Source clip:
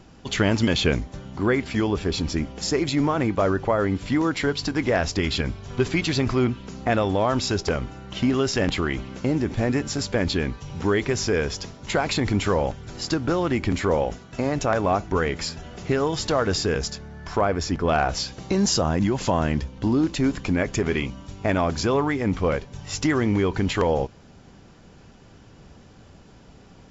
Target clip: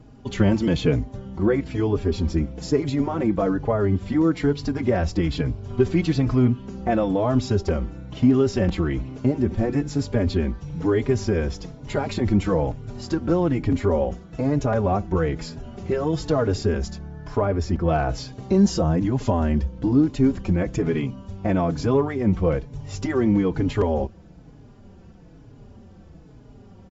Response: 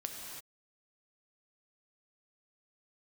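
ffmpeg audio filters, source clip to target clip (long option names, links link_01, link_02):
-filter_complex "[0:a]tiltshelf=frequency=880:gain=6.5,asplit=2[link_01][link_02];[link_02]adelay=4.3,afreqshift=-1.1[link_03];[link_01][link_03]amix=inputs=2:normalize=1"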